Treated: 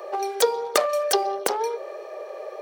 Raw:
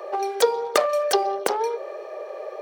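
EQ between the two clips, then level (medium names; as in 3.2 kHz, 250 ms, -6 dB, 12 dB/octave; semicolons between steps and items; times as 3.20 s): treble shelf 5 kHz +6.5 dB; -1.5 dB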